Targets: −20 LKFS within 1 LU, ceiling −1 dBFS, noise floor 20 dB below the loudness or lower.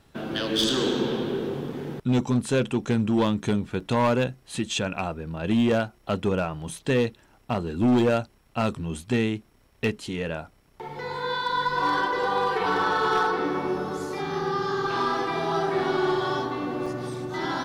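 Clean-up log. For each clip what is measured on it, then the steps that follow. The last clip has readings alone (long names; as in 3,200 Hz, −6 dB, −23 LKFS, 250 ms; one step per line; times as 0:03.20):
share of clipped samples 1.4%; peaks flattened at −16.5 dBFS; number of dropouts 2; longest dropout 4.6 ms; integrated loudness −26.0 LKFS; sample peak −16.5 dBFS; target loudness −20.0 LKFS
→ clipped peaks rebuilt −16.5 dBFS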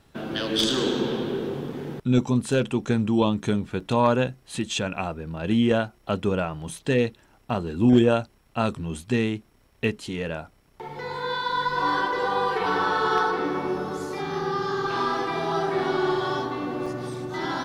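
share of clipped samples 0.0%; number of dropouts 2; longest dropout 4.6 ms
→ repair the gap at 0:03.80/0:16.86, 4.6 ms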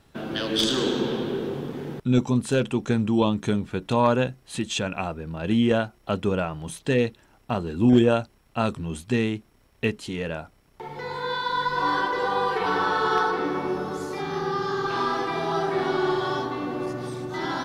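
number of dropouts 0; integrated loudness −25.5 LKFS; sample peak −7.5 dBFS; target loudness −20.0 LKFS
→ level +5.5 dB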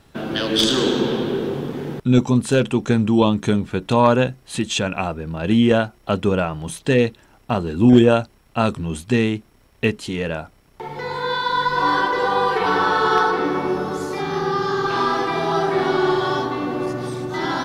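integrated loudness −20.0 LKFS; sample peak −2.0 dBFS; background noise floor −54 dBFS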